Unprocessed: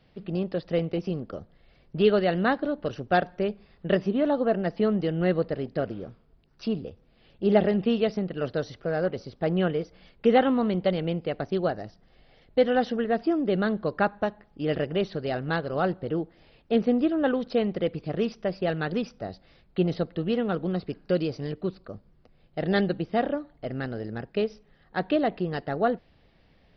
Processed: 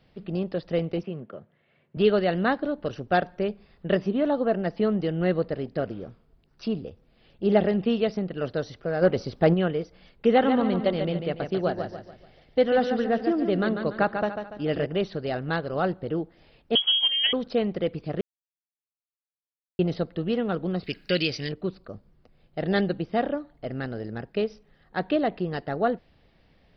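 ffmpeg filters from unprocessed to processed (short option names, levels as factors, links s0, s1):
-filter_complex "[0:a]asettb=1/sr,asplit=3[s0][s1][s2];[s0]atrim=end=1.034[s3];[s1]atrim=start=1.03:end=1.97,asetpts=PTS-STARTPTS,afade=t=in:d=0.004:c=qsin,afade=t=out:st=0.936:d=0.004:c=qsin,highpass=f=130:w=0.5412,highpass=f=130:w=1.3066,equalizer=f=180:t=q:w=4:g=-5,equalizer=f=290:t=q:w=4:g=-9,equalizer=f=480:t=q:w=4:g=-4,equalizer=f=780:t=q:w=4:g=-6,equalizer=f=1200:t=q:w=4:g=-3,lowpass=f=2900:w=0.5412,lowpass=f=2900:w=1.3066[s4];[s2]atrim=start=1.966[s5];[s3][s4]acrossfade=d=0.004:c1=hsin:c2=qsin[s6];[s6][s5]acrossfade=d=0.004:c1=qsin:c2=hsin,asplit=3[s7][s8][s9];[s7]afade=t=out:st=9.01:d=0.02[s10];[s8]acontrast=88,afade=t=in:st=9.01:d=0.02,afade=t=out:st=9.53:d=0.02[s11];[s9]afade=t=in:st=9.53:d=0.02[s12];[s10][s11][s12]amix=inputs=3:normalize=0,asettb=1/sr,asplit=3[s13][s14][s15];[s13]atrim=end=10.294[s16];[s14]atrim=start=10.29:end=14.86,asetpts=PTS-STARTPTS,afade=t=in:d=0.004:c=qsin,afade=t=out:st=4.566:d=0.004:c=qsin,aecho=1:1:144|288|432|576|720:0.447|0.179|0.0715|0.0286|0.0114,atrim=end_sample=201537[s17];[s15]atrim=start=14.856[s18];[s16][s17]acrossfade=d=0.004:c1=hsin:c2=qsin[s19];[s19][s18]acrossfade=d=0.004:c1=qsin:c2=hsin,asettb=1/sr,asplit=3[s20][s21][s22];[s20]atrim=end=16.754[s23];[s21]atrim=start=16.75:end=17.33,asetpts=PTS-STARTPTS,afade=t=in:d=0.004:c=qsin,afade=t=out:st=0.576:d=0.004:c=qsin,lowpass=f=3000:t=q:w=0.5098,lowpass=f=3000:t=q:w=0.6013,lowpass=f=3000:t=q:w=0.9,lowpass=f=3000:t=q:w=2.563,afreqshift=-3500[s24];[s22]atrim=start=17.326[s25];[s23][s24]acrossfade=d=0.004:c1=hsin:c2=qsin[s26];[s26][s25]acrossfade=d=0.004:c1=qsin:c2=hsin,asettb=1/sr,asplit=3[s27][s28][s29];[s27]atrim=end=20.834[s30];[s28]atrim=start=20.83:end=21.49,asetpts=PTS-STARTPTS,afade=t=in:d=0.004:c=qsin,afade=t=out:st=0.656:d=0.004:c=qsin,highshelf=f=1500:t=q:w=1.5:g=12.5[s31];[s29]atrim=start=21.486[s32];[s30][s31]acrossfade=d=0.004:c1=hsin:c2=qsin[s33];[s33][s32]acrossfade=d=0.004:c1=qsin:c2=hsin,asplit=3[s34][s35][s36];[s34]atrim=end=18.21,asetpts=PTS-STARTPTS,afade=t=out:st=18.206:d=0.004:c=hsin[s37];[s35]atrim=start=18.21:end=19.79,asetpts=PTS-STARTPTS,volume=0[s38];[s36]atrim=start=19.79,asetpts=PTS-STARTPTS,afade=t=in:d=0.004:c=hsin[s39];[s37][s38][s39]concat=n=3:v=0:a=1"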